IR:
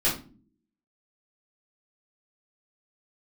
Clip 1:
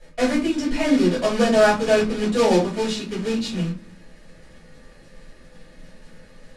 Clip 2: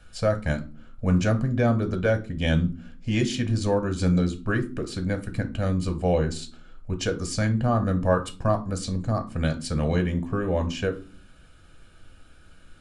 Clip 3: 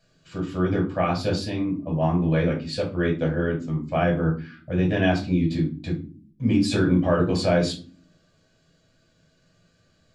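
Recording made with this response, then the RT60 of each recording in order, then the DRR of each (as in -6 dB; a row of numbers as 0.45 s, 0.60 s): 1; no single decay rate, no single decay rate, no single decay rate; -9.0 dB, 7.0 dB, -1.0 dB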